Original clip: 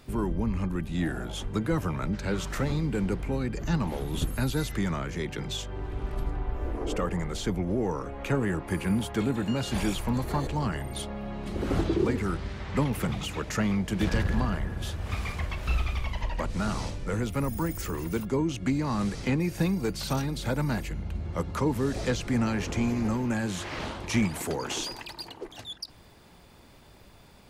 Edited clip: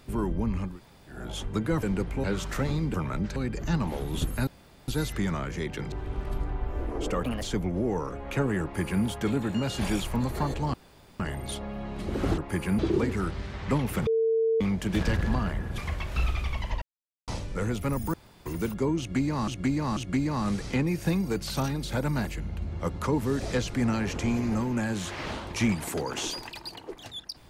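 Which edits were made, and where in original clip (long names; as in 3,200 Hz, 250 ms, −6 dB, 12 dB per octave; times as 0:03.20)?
0:00.69–0:01.18: fill with room tone, crossfade 0.24 s
0:01.83–0:02.25: swap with 0:02.95–0:03.36
0:04.47: splice in room tone 0.41 s
0:05.51–0:05.78: remove
0:07.10–0:07.36: play speed 139%
0:08.56–0:08.97: duplicate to 0:11.85
0:10.67: splice in room tone 0.46 s
0:13.13–0:13.67: beep over 450 Hz −21 dBFS
0:14.84–0:15.29: remove
0:16.33–0:16.79: silence
0:17.65–0:17.97: fill with room tone
0:18.50–0:18.99: repeat, 3 plays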